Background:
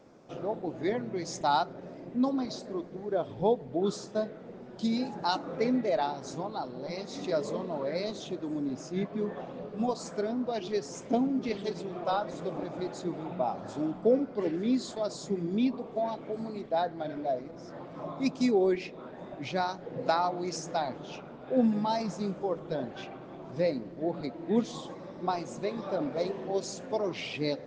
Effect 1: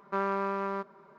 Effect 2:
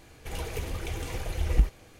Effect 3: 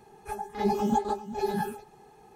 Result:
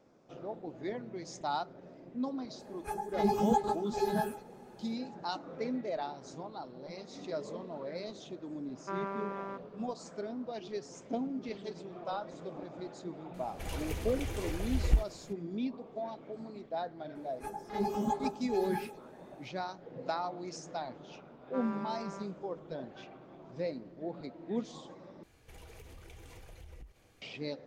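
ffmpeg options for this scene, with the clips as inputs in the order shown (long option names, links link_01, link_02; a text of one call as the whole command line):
ffmpeg -i bed.wav -i cue0.wav -i cue1.wav -i cue2.wav -filter_complex "[3:a]asplit=2[link_01][link_02];[1:a]asplit=2[link_03][link_04];[2:a]asplit=2[link_05][link_06];[0:a]volume=-8dB[link_07];[link_03]equalizer=frequency=4400:width=6.4:gain=-6.5[link_08];[link_02]acontrast=82[link_09];[link_06]acompressor=threshold=-36dB:ratio=6:attack=3.2:release=140:knee=1:detection=peak[link_10];[link_07]asplit=2[link_11][link_12];[link_11]atrim=end=25.234[link_13];[link_10]atrim=end=1.99,asetpts=PTS-STARTPTS,volume=-11.5dB[link_14];[link_12]atrim=start=27.216[link_15];[link_01]atrim=end=2.35,asetpts=PTS-STARTPTS,volume=-2.5dB,afade=type=in:duration=0.004:curve=hsin,afade=type=out:start_time=2.346:duration=0.004:curve=hsin,adelay=2590[link_16];[link_08]atrim=end=1.18,asetpts=PTS-STARTPTS,volume=-8dB,afade=type=in:duration=0.004:curve=hsin,afade=type=out:start_time=1.176:duration=0.004:curve=hsin,adelay=8750[link_17];[link_05]atrim=end=1.99,asetpts=PTS-STARTPTS,volume=-4dB,afade=type=in:duration=0.004:curve=hsin,afade=type=out:start_time=1.986:duration=0.004:curve=hsin,adelay=13340[link_18];[link_09]atrim=end=2.35,asetpts=PTS-STARTPTS,volume=-13.5dB,afade=type=in:duration=0.004:curve=hsin,afade=type=out:start_time=2.346:duration=0.004:curve=hsin,adelay=17150[link_19];[link_04]atrim=end=1.18,asetpts=PTS-STARTPTS,volume=-12dB,afade=type=in:duration=0.004:curve=hsin,afade=type=out:start_time=1.176:duration=0.004:curve=hsin,adelay=21410[link_20];[link_13][link_14]acrossfade=duration=0.004:curve1=hsin:curve2=hsin[link_21];[link_21][link_15]acrossfade=duration=0.004:curve1=hsin:curve2=hsin[link_22];[link_22][link_16][link_17][link_18][link_19][link_20]amix=inputs=6:normalize=0" out.wav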